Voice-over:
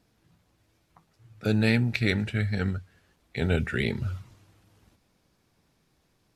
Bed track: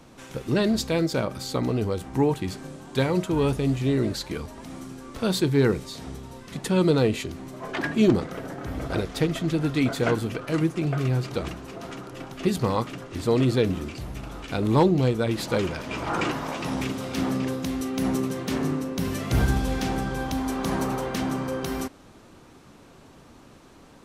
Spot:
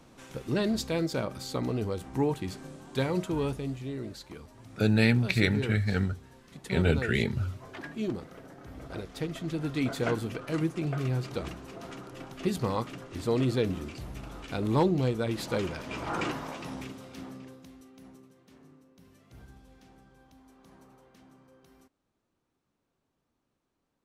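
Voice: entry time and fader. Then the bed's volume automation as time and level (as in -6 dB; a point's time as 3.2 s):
3.35 s, 0.0 dB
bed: 3.3 s -5.5 dB
3.89 s -13.5 dB
8.71 s -13.5 dB
9.94 s -5.5 dB
16.31 s -5.5 dB
18.34 s -30 dB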